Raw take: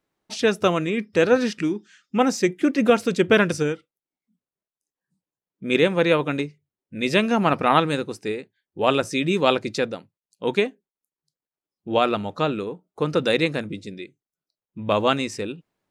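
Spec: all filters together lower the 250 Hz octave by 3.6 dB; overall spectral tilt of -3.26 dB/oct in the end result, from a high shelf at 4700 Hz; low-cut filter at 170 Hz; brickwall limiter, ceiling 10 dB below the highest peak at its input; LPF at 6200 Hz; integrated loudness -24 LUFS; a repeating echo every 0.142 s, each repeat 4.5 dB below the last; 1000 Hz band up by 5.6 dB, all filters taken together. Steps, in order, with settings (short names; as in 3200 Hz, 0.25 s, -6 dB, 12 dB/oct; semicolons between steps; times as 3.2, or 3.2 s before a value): HPF 170 Hz; LPF 6200 Hz; bell 250 Hz -4 dB; bell 1000 Hz +8 dB; high shelf 4700 Hz -5.5 dB; limiter -10 dBFS; feedback echo 0.142 s, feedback 60%, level -4.5 dB; gain -0.5 dB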